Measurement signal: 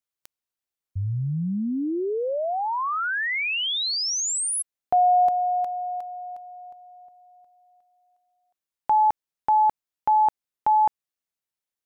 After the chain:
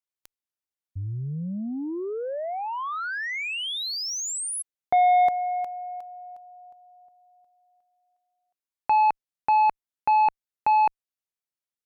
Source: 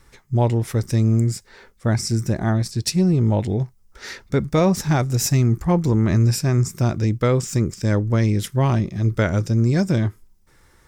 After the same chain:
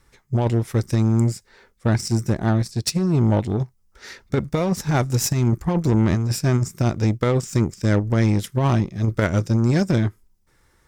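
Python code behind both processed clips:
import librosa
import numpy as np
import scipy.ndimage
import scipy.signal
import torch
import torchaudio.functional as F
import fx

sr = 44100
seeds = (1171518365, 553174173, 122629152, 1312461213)

y = fx.cheby_harmonics(x, sr, harmonics=(7,), levels_db=(-23,), full_scale_db=-8.0)
y = fx.over_compress(y, sr, threshold_db=-17.0, ratio=-0.5)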